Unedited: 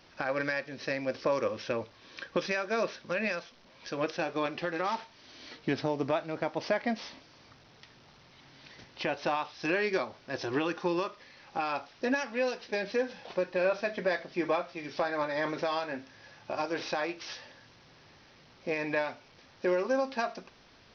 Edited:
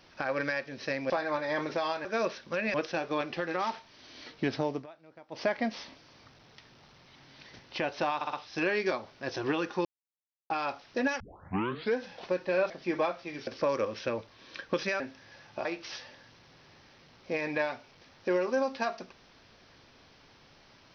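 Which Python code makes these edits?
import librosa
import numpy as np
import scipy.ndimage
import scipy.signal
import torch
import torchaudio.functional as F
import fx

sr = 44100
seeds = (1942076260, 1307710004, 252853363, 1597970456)

y = fx.edit(x, sr, fx.swap(start_s=1.1, length_s=1.53, other_s=14.97, other_length_s=0.95),
    fx.cut(start_s=3.32, length_s=0.67),
    fx.fade_down_up(start_s=5.95, length_s=0.74, db=-20.0, fade_s=0.16),
    fx.stutter(start_s=9.4, slice_s=0.06, count=4),
    fx.silence(start_s=10.92, length_s=0.65),
    fx.tape_start(start_s=12.27, length_s=0.77),
    fx.cut(start_s=13.77, length_s=0.43),
    fx.cut(start_s=16.57, length_s=0.45), tone=tone)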